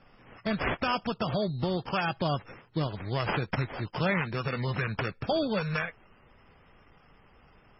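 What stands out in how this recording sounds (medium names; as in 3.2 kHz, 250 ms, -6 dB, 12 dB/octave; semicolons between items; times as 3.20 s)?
aliases and images of a low sample rate 4 kHz, jitter 0%; MP3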